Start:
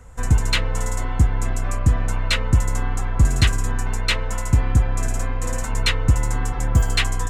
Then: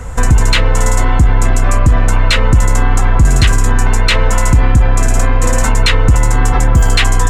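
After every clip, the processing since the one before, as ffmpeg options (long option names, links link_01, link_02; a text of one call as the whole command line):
ffmpeg -i in.wav -filter_complex "[0:a]highshelf=frequency=9700:gain=-4,asplit=2[link_01][link_02];[link_02]acontrast=62,volume=0dB[link_03];[link_01][link_03]amix=inputs=2:normalize=0,alimiter=level_in=10.5dB:limit=-1dB:release=50:level=0:latency=1,volume=-1dB" out.wav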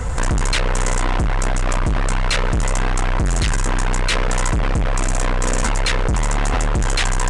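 ffmpeg -i in.wav -af "asoftclip=type=hard:threshold=-17.5dB,acrusher=bits=6:mode=log:mix=0:aa=0.000001,aresample=22050,aresample=44100,volume=2dB" out.wav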